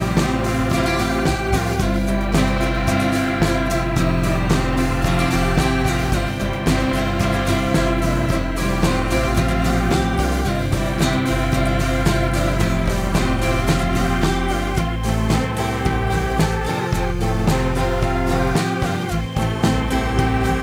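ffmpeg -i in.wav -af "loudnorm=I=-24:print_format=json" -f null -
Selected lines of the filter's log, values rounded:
"input_i" : "-19.5",
"input_tp" : "-5.8",
"input_lra" : "1.0",
"input_thresh" : "-29.5",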